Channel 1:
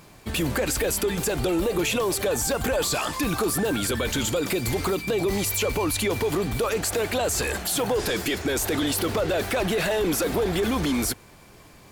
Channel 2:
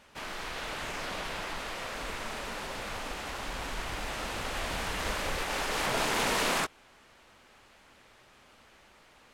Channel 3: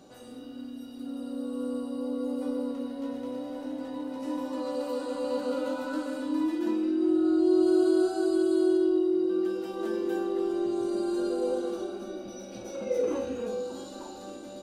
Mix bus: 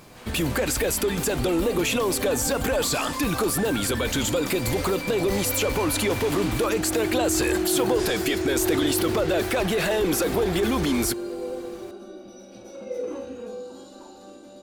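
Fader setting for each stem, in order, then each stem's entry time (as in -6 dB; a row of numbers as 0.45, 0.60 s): +0.5, -8.0, -3.0 dB; 0.00, 0.00, 0.00 s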